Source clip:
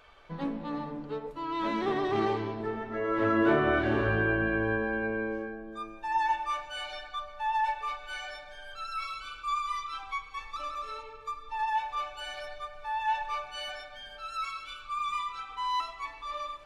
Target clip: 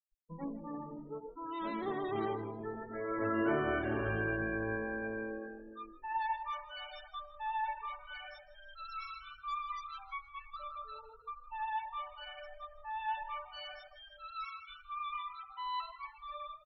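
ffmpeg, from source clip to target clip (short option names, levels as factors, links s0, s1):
-filter_complex "[0:a]afftfilt=real='re*gte(hypot(re,im),0.02)':imag='im*gte(hypot(re,im),0.02)':win_size=1024:overlap=0.75,asplit=4[s0][s1][s2][s3];[s1]adelay=158,afreqshift=45,volume=0.126[s4];[s2]adelay=316,afreqshift=90,volume=0.0442[s5];[s3]adelay=474,afreqshift=135,volume=0.0155[s6];[s0][s4][s5][s6]amix=inputs=4:normalize=0,volume=0.422"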